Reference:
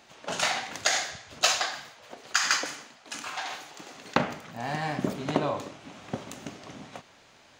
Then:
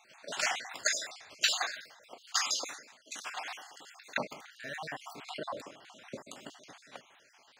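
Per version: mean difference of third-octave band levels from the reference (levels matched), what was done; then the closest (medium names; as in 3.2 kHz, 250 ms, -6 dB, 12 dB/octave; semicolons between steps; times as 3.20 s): 7.5 dB: random holes in the spectrogram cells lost 49%; high-pass 590 Hz 6 dB/octave; trim -2 dB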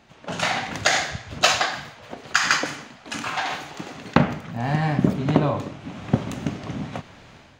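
4.5 dB: tone controls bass +11 dB, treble -7 dB; level rider gain up to 9 dB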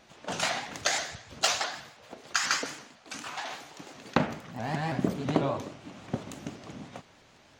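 2.0 dB: bass shelf 360 Hz +7 dB; vibrato with a chosen wave saw up 6.1 Hz, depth 160 cents; trim -3 dB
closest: third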